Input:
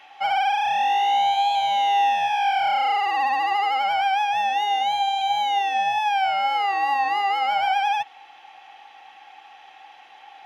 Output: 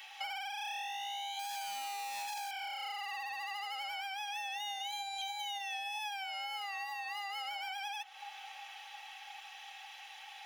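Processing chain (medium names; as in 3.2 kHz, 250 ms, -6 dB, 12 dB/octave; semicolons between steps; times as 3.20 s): 1.39–2.51 s: overdrive pedal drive 37 dB, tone 1.6 kHz, clips at -13 dBFS; comb of notches 350 Hz; feedback echo behind a low-pass 357 ms, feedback 75%, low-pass 1.4 kHz, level -24 dB; compression 10:1, threshold -33 dBFS, peak gain reduction 16 dB; differentiator; trim +10.5 dB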